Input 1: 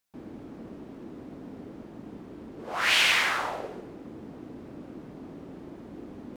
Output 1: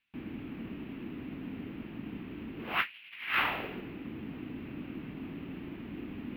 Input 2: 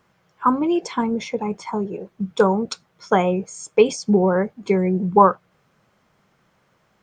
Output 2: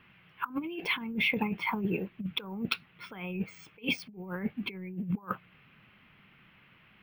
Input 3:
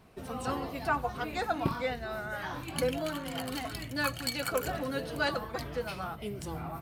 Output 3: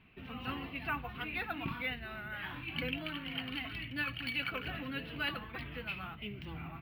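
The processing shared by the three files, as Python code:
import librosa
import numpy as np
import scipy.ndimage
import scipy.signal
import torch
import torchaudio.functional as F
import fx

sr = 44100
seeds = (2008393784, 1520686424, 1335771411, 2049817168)

y = np.repeat(scipy.signal.resample_poly(x, 1, 3), 3)[:len(x)]
y = fx.curve_eq(y, sr, hz=(270.0, 550.0, 1600.0, 2700.0, 7400.0, 12000.0), db=(0, -11, 1, 12, -30, -11))
y = fx.over_compress(y, sr, threshold_db=-28.0, ratio=-0.5)
y = F.gain(torch.from_numpy(y), -4.5).numpy()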